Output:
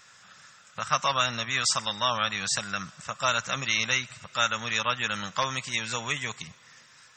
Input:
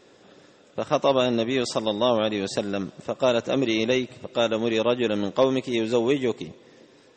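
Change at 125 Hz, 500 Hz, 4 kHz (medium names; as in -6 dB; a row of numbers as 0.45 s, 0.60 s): -4.5 dB, -15.0 dB, +2.5 dB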